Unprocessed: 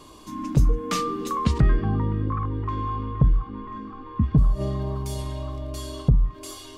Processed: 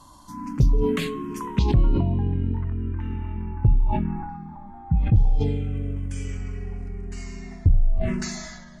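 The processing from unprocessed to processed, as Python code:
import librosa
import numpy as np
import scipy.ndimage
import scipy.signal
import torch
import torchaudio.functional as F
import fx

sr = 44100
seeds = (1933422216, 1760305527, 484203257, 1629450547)

y = fx.speed_glide(x, sr, from_pct=96, to_pct=58)
y = fx.env_phaser(y, sr, low_hz=400.0, high_hz=1700.0, full_db=-17.0)
y = fx.sustainer(y, sr, db_per_s=36.0)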